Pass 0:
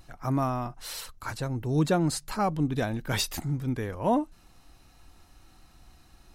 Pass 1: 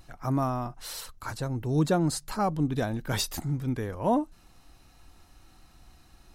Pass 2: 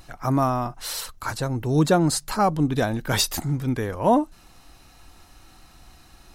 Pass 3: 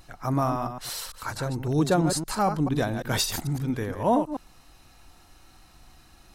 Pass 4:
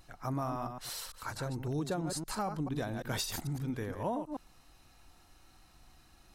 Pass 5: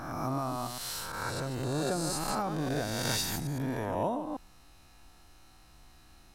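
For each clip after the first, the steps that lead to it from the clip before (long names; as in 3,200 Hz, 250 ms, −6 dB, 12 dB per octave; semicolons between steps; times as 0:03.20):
dynamic equaliser 2,400 Hz, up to −5 dB, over −47 dBFS, Q 1.5
low-shelf EQ 370 Hz −4 dB; level +8 dB
delay that plays each chunk backwards 112 ms, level −7.5 dB; level −4 dB
downward compressor, threshold −24 dBFS, peak gain reduction 7.5 dB; level −7 dB
peak hold with a rise ahead of every peak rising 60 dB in 1.54 s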